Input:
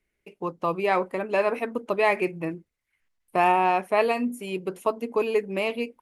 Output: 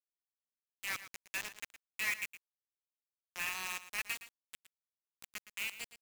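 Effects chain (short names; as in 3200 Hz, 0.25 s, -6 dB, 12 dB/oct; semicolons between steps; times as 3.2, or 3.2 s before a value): inverse Chebyshev high-pass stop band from 480 Hz, stop band 60 dB; bit-crush 5-bit; echo 0.115 s -13.5 dB; gain -7 dB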